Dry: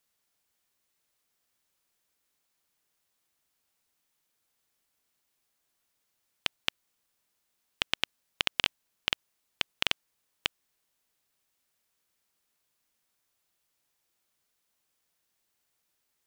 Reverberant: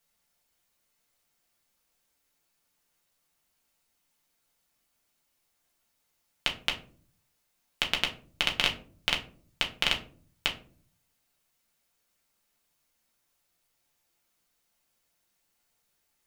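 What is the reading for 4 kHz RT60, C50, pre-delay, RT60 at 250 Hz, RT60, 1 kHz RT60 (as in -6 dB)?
0.25 s, 12.5 dB, 4 ms, 0.75 s, 0.45 s, 0.35 s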